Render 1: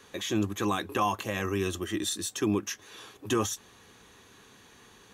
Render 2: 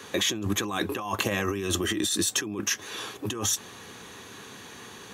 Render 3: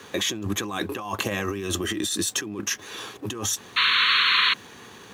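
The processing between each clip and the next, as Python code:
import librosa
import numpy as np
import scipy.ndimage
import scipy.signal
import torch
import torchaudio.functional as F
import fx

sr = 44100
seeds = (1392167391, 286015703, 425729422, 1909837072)

y1 = scipy.signal.sosfilt(scipy.signal.butter(2, 92.0, 'highpass', fs=sr, output='sos'), x)
y1 = fx.over_compress(y1, sr, threshold_db=-35.0, ratio=-1.0)
y1 = y1 * 10.0 ** (6.5 / 20.0)
y2 = fx.spec_paint(y1, sr, seeds[0], shape='noise', start_s=3.76, length_s=0.78, low_hz=990.0, high_hz=4400.0, level_db=-20.0)
y2 = fx.backlash(y2, sr, play_db=-48.5)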